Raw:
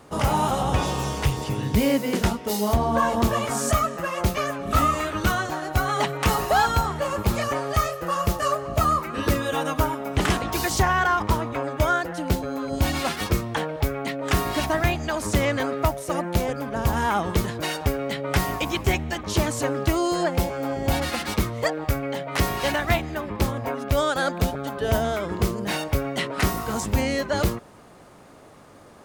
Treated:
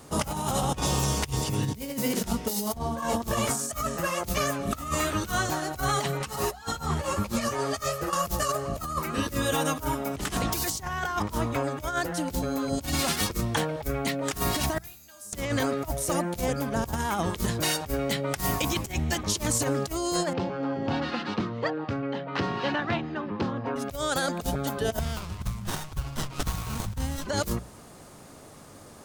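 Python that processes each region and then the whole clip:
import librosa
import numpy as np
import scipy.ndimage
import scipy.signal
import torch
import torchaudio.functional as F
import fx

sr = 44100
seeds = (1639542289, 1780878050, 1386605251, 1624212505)

y = fx.chain(x, sr, fx.high_shelf(hz=10000.0, db=-6.5),
    fx.over_compress(threshold_db=-27.0, ratio=-0.5),
    fx.ensemble(), at=(6.19, 8.13))
y = fx.chain(y, sr, fx.pre_emphasis(coefficient=0.8),
    fx.comb_fb(f0_hz=200.0, decay_s=1.0, harmonics='all', damping=0.0, mix_pct=90), at=(14.78, 15.33))
y = fx.chain(y, sr, fx.cabinet(low_hz=130.0, low_slope=24, high_hz=3400.0, hz=(150.0, 640.0, 2200.0, 3400.0), db=(-4, -7, -9, -5)),
    fx.transformer_sat(knee_hz=450.0), at=(20.33, 23.76))
y = fx.chain(y, sr, fx.cheby1_bandstop(low_hz=120.0, high_hz=1300.0, order=2),
    fx.running_max(window=17), at=(24.99, 27.27))
y = fx.bass_treble(y, sr, bass_db=5, treble_db=10)
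y = fx.hum_notches(y, sr, base_hz=60, count=3)
y = fx.over_compress(y, sr, threshold_db=-23.0, ratio=-0.5)
y = y * librosa.db_to_amplitude(-4.0)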